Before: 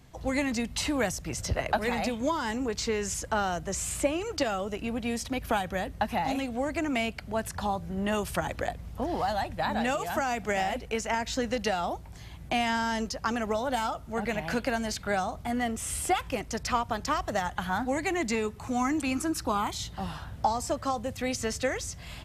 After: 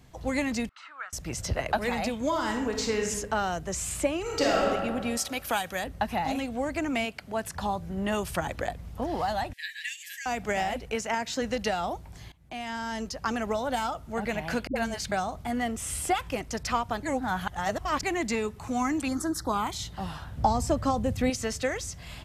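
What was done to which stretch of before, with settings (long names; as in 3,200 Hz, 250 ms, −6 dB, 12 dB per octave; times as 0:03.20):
0:00.69–0:01.13: four-pole ladder band-pass 1,400 Hz, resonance 80%
0:02.27–0:03.08: thrown reverb, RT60 0.96 s, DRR 3 dB
0:04.21–0:04.62: thrown reverb, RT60 1.8 s, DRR −4.5 dB
0:05.17–0:05.84: spectral tilt +2.5 dB per octave
0:07.04–0:07.55: high-pass filter 320 Hz → 120 Hz 6 dB per octave
0:09.53–0:10.26: linear-phase brick-wall high-pass 1,600 Hz
0:10.95–0:11.40: high-pass filter 82 Hz → 180 Hz
0:12.32–0:13.31: fade in, from −21 dB
0:14.67–0:15.12: all-pass dispersion highs, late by 87 ms, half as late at 330 Hz
0:17.03–0:18.03: reverse
0:19.08–0:19.53: Butterworth band-reject 2,600 Hz, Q 1.7
0:20.37–0:21.30: low-shelf EQ 370 Hz +11 dB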